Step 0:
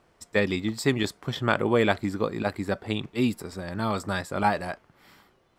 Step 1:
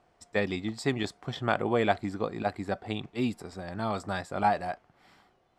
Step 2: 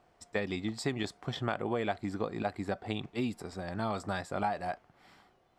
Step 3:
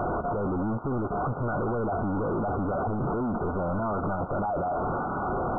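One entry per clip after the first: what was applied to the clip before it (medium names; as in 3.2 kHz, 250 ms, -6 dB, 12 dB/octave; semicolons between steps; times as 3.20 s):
Bessel low-pass 8.5 kHz, order 4; peaking EQ 730 Hz +9.5 dB 0.26 oct; trim -5 dB
compression 4:1, threshold -29 dBFS, peak gain reduction 9 dB
one-bit comparator; brick-wall FIR low-pass 1.5 kHz; trim +9 dB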